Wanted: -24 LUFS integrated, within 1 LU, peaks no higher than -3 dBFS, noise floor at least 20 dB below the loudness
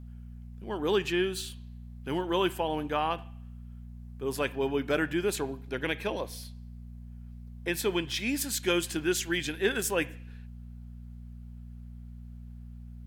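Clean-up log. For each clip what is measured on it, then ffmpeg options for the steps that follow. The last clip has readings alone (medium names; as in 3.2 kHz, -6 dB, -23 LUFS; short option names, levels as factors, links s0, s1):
hum 60 Hz; highest harmonic 240 Hz; hum level -42 dBFS; loudness -30.5 LUFS; peak level -14.0 dBFS; loudness target -24.0 LUFS
-> -af "bandreject=f=60:t=h:w=4,bandreject=f=120:t=h:w=4,bandreject=f=180:t=h:w=4,bandreject=f=240:t=h:w=4"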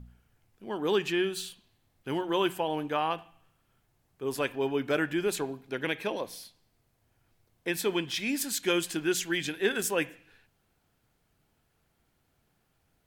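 hum not found; loudness -30.5 LUFS; peak level -14.5 dBFS; loudness target -24.0 LUFS
-> -af "volume=2.11"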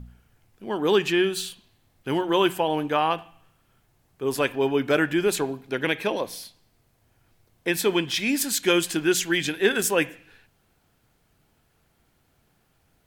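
loudness -24.0 LUFS; peak level -8.0 dBFS; noise floor -67 dBFS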